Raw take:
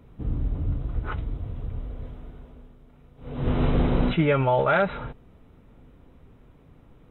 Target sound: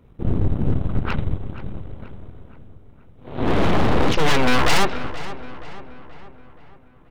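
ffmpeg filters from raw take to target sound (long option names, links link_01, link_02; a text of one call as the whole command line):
ffmpeg -i in.wav -filter_complex "[0:a]asettb=1/sr,asplit=3[link_01][link_02][link_03];[link_01]atrim=end=1.384[link_04];[link_02]atrim=start=1.38:end=3.53,asetpts=PTS-STARTPTS,afade=type=in:duration=0.004:curve=qsin,afade=type=out:start_time=2.146:duration=0.004:curve=qsin,highpass=74[link_05];[link_03]atrim=start=3.526[link_06];[link_04][link_05]acrossfade=duration=0.004:curve1=hsin:curve2=qsin[link_07];[link_07][link_06]acrossfade=duration=0.004:curve1=qsin:curve2=hsin,aeval=exprs='0.562*(cos(1*acos(clip(val(0)/0.562,-1,1)))-cos(1*PI/2))+0.112*(cos(7*acos(clip(val(0)/0.562,-1,1)))-cos(7*PI/2))+0.2*(cos(8*acos(clip(val(0)/0.562,-1,1)))-cos(8*PI/2))':channel_layout=same,asoftclip=type=hard:threshold=-17.5dB,asplit=2[link_08][link_09];[link_09]adelay=477,lowpass=frequency=3500:poles=1,volume=-14dB,asplit=2[link_10][link_11];[link_11]adelay=477,lowpass=frequency=3500:poles=1,volume=0.53,asplit=2[link_12][link_13];[link_13]adelay=477,lowpass=frequency=3500:poles=1,volume=0.53,asplit=2[link_14][link_15];[link_15]adelay=477,lowpass=frequency=3500:poles=1,volume=0.53,asplit=2[link_16][link_17];[link_17]adelay=477,lowpass=frequency=3500:poles=1,volume=0.53[link_18];[link_08][link_10][link_12][link_14][link_16][link_18]amix=inputs=6:normalize=0,volume=6.5dB" out.wav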